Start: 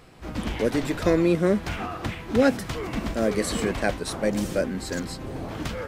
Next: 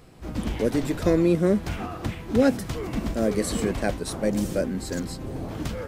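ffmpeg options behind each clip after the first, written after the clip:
ffmpeg -i in.wav -af "equalizer=frequency=1900:width=0.35:gain=-6.5,volume=2dB" out.wav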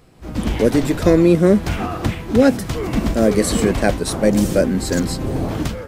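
ffmpeg -i in.wav -af "dynaudnorm=framelen=140:gausssize=5:maxgain=11.5dB" out.wav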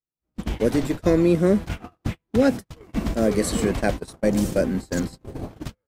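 ffmpeg -i in.wav -af "agate=range=-45dB:threshold=-19dB:ratio=16:detection=peak,volume=-5.5dB" out.wav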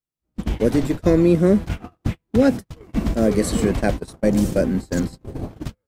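ffmpeg -i in.wav -af "lowshelf=frequency=410:gain=4.5" out.wav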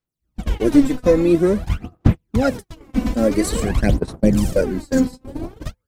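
ffmpeg -i in.wav -af "aphaser=in_gain=1:out_gain=1:delay=4:decay=0.69:speed=0.49:type=sinusoidal,volume=-1dB" out.wav

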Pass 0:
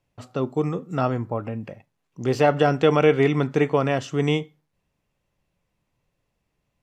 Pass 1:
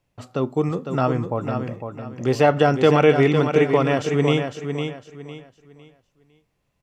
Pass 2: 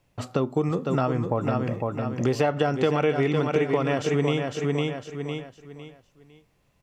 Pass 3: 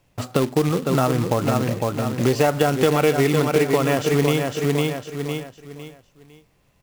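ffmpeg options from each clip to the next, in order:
ffmpeg -i in.wav -af "aecho=1:1:505|1010|1515|2020:0.447|0.13|0.0376|0.0109,volume=2dB" out.wav
ffmpeg -i in.wav -af "acompressor=threshold=-27dB:ratio=4,volume=5.5dB" out.wav
ffmpeg -i in.wav -af "acrusher=bits=3:mode=log:mix=0:aa=0.000001,volume=4.5dB" out.wav

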